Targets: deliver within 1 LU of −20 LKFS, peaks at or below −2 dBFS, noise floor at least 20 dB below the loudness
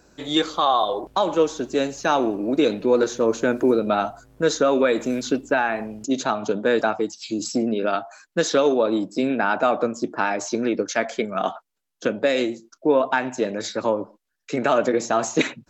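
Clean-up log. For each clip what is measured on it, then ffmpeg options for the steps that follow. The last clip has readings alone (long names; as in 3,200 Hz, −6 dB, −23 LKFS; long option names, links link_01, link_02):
integrated loudness −22.5 LKFS; sample peak −7.0 dBFS; target loudness −20.0 LKFS
→ -af "volume=2.5dB"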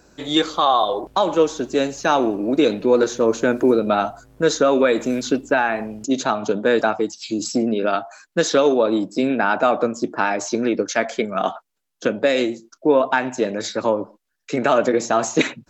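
integrated loudness −20.0 LKFS; sample peak −4.5 dBFS; background noise floor −75 dBFS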